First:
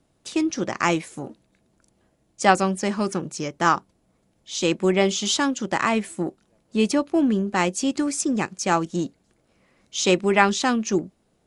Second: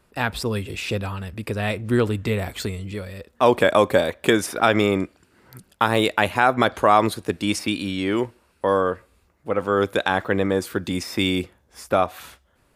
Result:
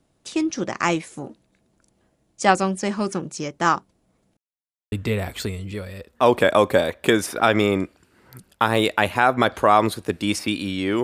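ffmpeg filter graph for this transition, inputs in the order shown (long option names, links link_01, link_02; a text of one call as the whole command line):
ffmpeg -i cue0.wav -i cue1.wav -filter_complex "[0:a]apad=whole_dur=11.03,atrim=end=11.03,asplit=2[link_01][link_02];[link_01]atrim=end=4.37,asetpts=PTS-STARTPTS,afade=type=out:start_time=4.366:duration=0.004:curve=hsin[link_03];[link_02]atrim=start=4.37:end=4.92,asetpts=PTS-STARTPTS,volume=0[link_04];[1:a]atrim=start=2.12:end=8.23,asetpts=PTS-STARTPTS,afade=type=in:duration=0.004:curve=hsin[link_05];[link_03][link_04][link_05]concat=n=3:v=0:a=1" out.wav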